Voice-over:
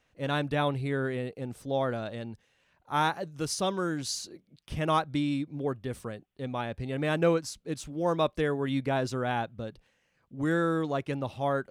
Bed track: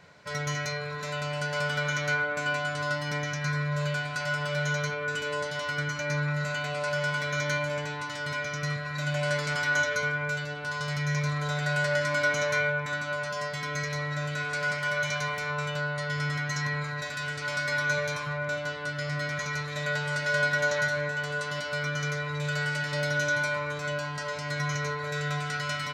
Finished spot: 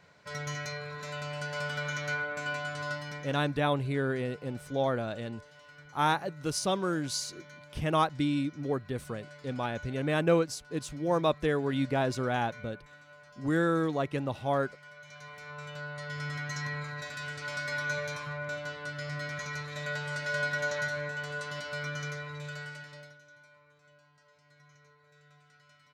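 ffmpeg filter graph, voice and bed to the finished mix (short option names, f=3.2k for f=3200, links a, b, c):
-filter_complex "[0:a]adelay=3050,volume=0dB[a];[1:a]volume=11.5dB,afade=t=out:st=2.9:d=0.54:silence=0.141254,afade=t=in:st=15.04:d=1.42:silence=0.141254,afade=t=out:st=21.91:d=1.27:silence=0.0562341[b];[a][b]amix=inputs=2:normalize=0"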